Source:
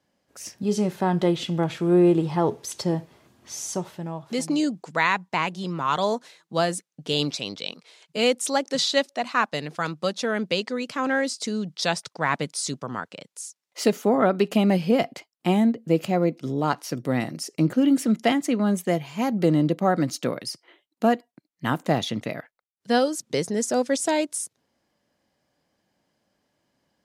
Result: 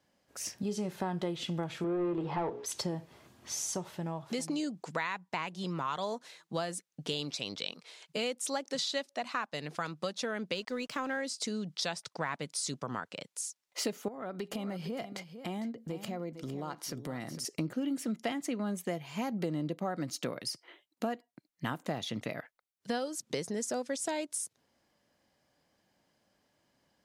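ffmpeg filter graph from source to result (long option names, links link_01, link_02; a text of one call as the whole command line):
ffmpeg -i in.wav -filter_complex "[0:a]asettb=1/sr,asplit=3[link_01][link_02][link_03];[link_01]atrim=end=1.844[link_04];[link_02]atrim=start=1.84:end=2.66,asetpts=PTS-STARTPTS,afade=type=in:duration=0.004:curve=qsin,afade=type=out:start_time=0.816:duration=0.004:curve=qsin,bandreject=frequency=60:width_type=h:width=6,bandreject=frequency=120:width_type=h:width=6,bandreject=frequency=180:width_type=h:width=6,bandreject=frequency=240:width_type=h:width=6,bandreject=frequency=300:width_type=h:width=6,bandreject=frequency=360:width_type=h:width=6,bandreject=frequency=420:width_type=h:width=6,bandreject=frequency=480:width_type=h:width=6,bandreject=frequency=540:width_type=h:width=6,asplit=2[link_05][link_06];[link_06]highpass=frequency=720:poles=1,volume=17dB,asoftclip=type=tanh:threshold=-10dB[link_07];[link_05][link_07]amix=inputs=2:normalize=0,lowpass=frequency=1400:poles=1,volume=-6dB,aemphasis=mode=reproduction:type=50fm[link_08];[link_03]atrim=start=2.656[link_09];[link_04][link_08]acrossfade=duration=0.004:curve1=hsin:curve2=qsin[link_10];[link_10][link_09]acrossfade=duration=0.004:curve1=qsin:curve2=hsin,asettb=1/sr,asplit=3[link_11][link_12][link_13];[link_11]atrim=end=10.544[link_14];[link_12]atrim=start=10.54:end=11.17,asetpts=PTS-STARTPTS,afade=type=in:duration=0.004:curve=qsin,afade=type=out:start_time=0.626:duration=0.004:curve=qsin,highpass=56,deesser=0.6,aeval=exprs='sgn(val(0))*max(abs(val(0))-0.00237,0)':channel_layout=same[link_15];[link_13]atrim=start=11.166[link_16];[link_14][link_15]acrossfade=duration=0.004:curve1=hsin:curve2=qsin[link_17];[link_17][link_16]acrossfade=duration=0.004:curve1=qsin:curve2=hsin,asettb=1/sr,asplit=3[link_18][link_19][link_20];[link_18]atrim=end=14.084[link_21];[link_19]atrim=start=14.08:end=17.45,asetpts=PTS-STARTPTS,afade=type=in:duration=0.004:curve=qsin,afade=type=out:start_time=3.366:duration=0.004:curve=qsin,bandreject=frequency=2600:width=11,acompressor=threshold=-37dB:ratio=2.5:attack=3.2:release=140:knee=1:detection=peak,aecho=1:1:454:0.251,atrim=end_sample=148617[link_22];[link_20]atrim=start=17.446[link_23];[link_21][link_22]acrossfade=duration=0.004:curve1=hsin:curve2=qsin[link_24];[link_24][link_23]acrossfade=duration=0.004:curve1=qsin:curve2=hsin,equalizer=frequency=250:width_type=o:width=2.5:gain=-2.5,acompressor=threshold=-33dB:ratio=4" out.wav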